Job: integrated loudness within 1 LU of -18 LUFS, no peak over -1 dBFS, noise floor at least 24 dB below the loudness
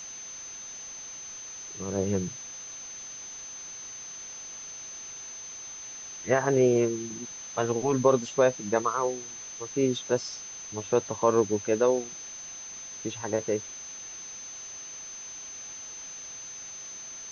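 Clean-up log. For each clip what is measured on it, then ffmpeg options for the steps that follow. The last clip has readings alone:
steady tone 6200 Hz; tone level -39 dBFS; noise floor -42 dBFS; noise floor target -55 dBFS; loudness -30.5 LUFS; peak -8.5 dBFS; loudness target -18.0 LUFS
-> -af "bandreject=f=6.2k:w=30"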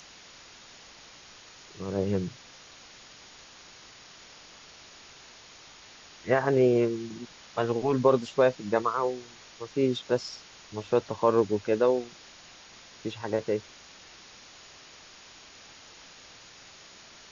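steady tone none; noise floor -51 dBFS; noise floor target -52 dBFS
-> -af "afftdn=nr=6:nf=-51"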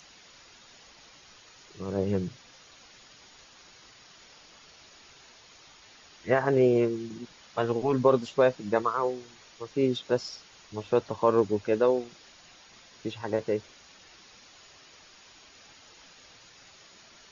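noise floor -55 dBFS; loudness -27.5 LUFS; peak -8.5 dBFS; loudness target -18.0 LUFS
-> -af "volume=9.5dB,alimiter=limit=-1dB:level=0:latency=1"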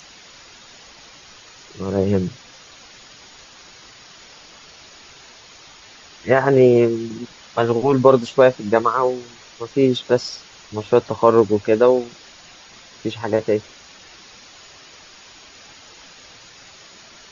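loudness -18.0 LUFS; peak -1.0 dBFS; noise floor -45 dBFS

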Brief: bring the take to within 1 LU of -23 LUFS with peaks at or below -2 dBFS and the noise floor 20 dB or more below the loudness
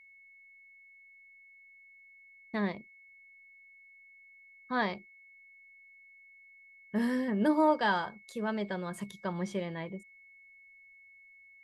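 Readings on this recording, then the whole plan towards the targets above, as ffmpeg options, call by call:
steady tone 2200 Hz; tone level -55 dBFS; loudness -32.5 LUFS; peak -15.5 dBFS; loudness target -23.0 LUFS
-> -af "bandreject=f=2.2k:w=30"
-af "volume=9.5dB"

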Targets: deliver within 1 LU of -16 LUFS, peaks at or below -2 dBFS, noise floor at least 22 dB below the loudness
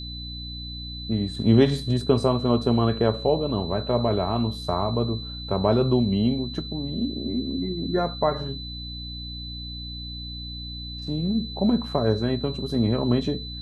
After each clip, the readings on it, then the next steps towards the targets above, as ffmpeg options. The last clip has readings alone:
hum 60 Hz; harmonics up to 300 Hz; hum level -36 dBFS; steady tone 4000 Hz; tone level -36 dBFS; loudness -25.0 LUFS; peak -5.5 dBFS; loudness target -16.0 LUFS
-> -af "bandreject=f=60:t=h:w=4,bandreject=f=120:t=h:w=4,bandreject=f=180:t=h:w=4,bandreject=f=240:t=h:w=4,bandreject=f=300:t=h:w=4"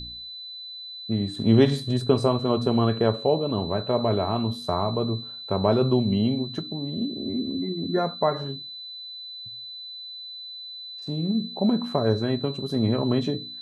hum none; steady tone 4000 Hz; tone level -36 dBFS
-> -af "bandreject=f=4k:w=30"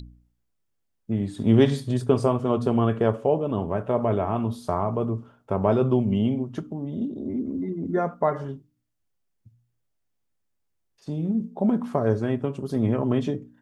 steady tone none; loudness -25.0 LUFS; peak -6.5 dBFS; loudness target -16.0 LUFS
-> -af "volume=9dB,alimiter=limit=-2dB:level=0:latency=1"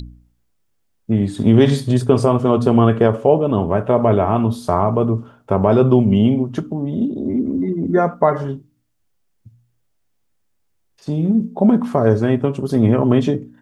loudness -16.5 LUFS; peak -2.0 dBFS; noise floor -66 dBFS

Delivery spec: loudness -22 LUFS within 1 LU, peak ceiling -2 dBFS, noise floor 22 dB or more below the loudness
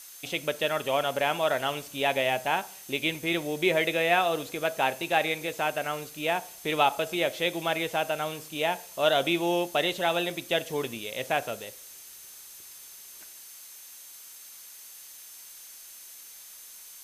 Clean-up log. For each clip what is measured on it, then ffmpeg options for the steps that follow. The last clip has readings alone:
steady tone 6300 Hz; tone level -54 dBFS; noise floor -47 dBFS; noise floor target -50 dBFS; loudness -27.5 LUFS; peak -9.0 dBFS; loudness target -22.0 LUFS
-> -af "bandreject=f=6.3k:w=30"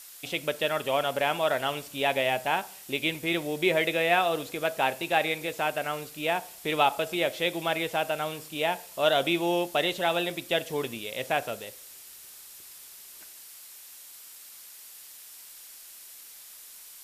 steady tone none; noise floor -48 dBFS; noise floor target -50 dBFS
-> -af "afftdn=nr=6:nf=-48"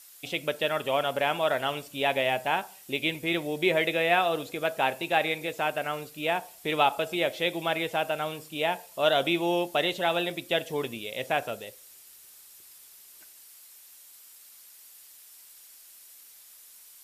noise floor -52 dBFS; loudness -28.0 LUFS; peak -9.0 dBFS; loudness target -22.0 LUFS
-> -af "volume=6dB"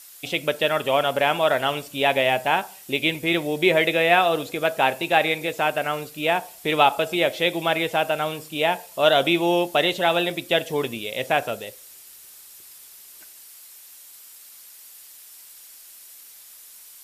loudness -22.0 LUFS; peak -3.0 dBFS; noise floor -46 dBFS

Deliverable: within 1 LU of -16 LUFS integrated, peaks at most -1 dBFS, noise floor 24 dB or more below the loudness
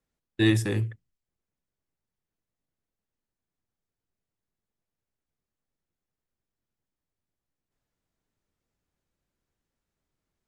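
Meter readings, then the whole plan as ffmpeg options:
loudness -26.0 LUFS; peak -9.0 dBFS; loudness target -16.0 LUFS
-> -af "volume=10dB,alimiter=limit=-1dB:level=0:latency=1"

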